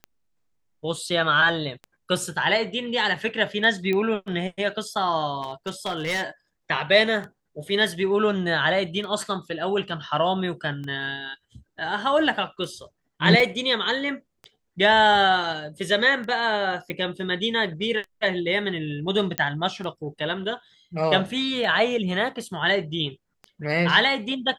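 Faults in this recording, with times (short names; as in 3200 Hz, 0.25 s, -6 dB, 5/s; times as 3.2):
tick 33 1/3 rpm -24 dBFS
3.93 pop -15 dBFS
5.42–6.25 clipped -22.5 dBFS
13.4 gap 2.7 ms
16.9 pop -17 dBFS
19.38 pop -7 dBFS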